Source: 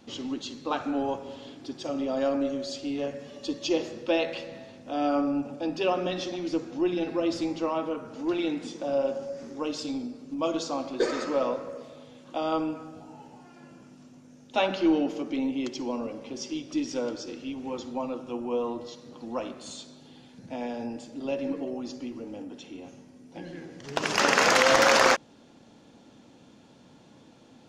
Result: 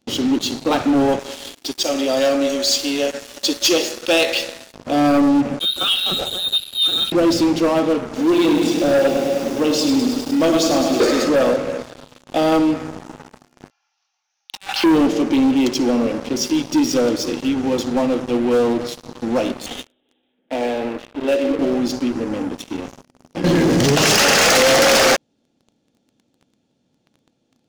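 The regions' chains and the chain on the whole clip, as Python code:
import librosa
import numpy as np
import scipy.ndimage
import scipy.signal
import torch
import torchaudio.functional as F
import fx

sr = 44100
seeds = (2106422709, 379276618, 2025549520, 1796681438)

y = fx.chain(x, sr, fx.highpass(hz=250.0, slope=12),
    fx.tilt_eq(slope=3.0), at=(1.19, 4.74))
y = fx.chain(y, sr, fx.fixed_phaser(hz=1900.0, stages=6),
    fx.freq_invert(carrier_hz=4000), at=(5.59, 7.12))
y = fx.chain(y, sr, fx.highpass(hz=110.0, slope=12),
    fx.echo_crushed(ms=103, feedback_pct=80, bits=9, wet_db=-7.0), at=(8.05, 11.03))
y = fx.chain(y, sr, fx.cheby1_bandpass(low_hz=790.0, high_hz=6200.0, order=5),
    fx.over_compress(threshold_db=-41.0, ratio=-1.0), at=(13.7, 14.84))
y = fx.chain(y, sr, fx.highpass(hz=300.0, slope=24),
    fx.resample_bad(factor=6, down='none', up='filtered'), at=(19.66, 21.59))
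y = fx.chain(y, sr, fx.dynamic_eq(hz=290.0, q=0.97, threshold_db=-40.0, ratio=4.0, max_db=-7),
    fx.env_flatten(amount_pct=70), at=(23.44, 24.56))
y = fx.peak_eq(y, sr, hz=1300.0, db=-6.5, octaves=1.7)
y = fx.notch(y, sr, hz=1000.0, q=8.2)
y = fx.leveller(y, sr, passes=5)
y = F.gain(torch.from_numpy(y), -1.5).numpy()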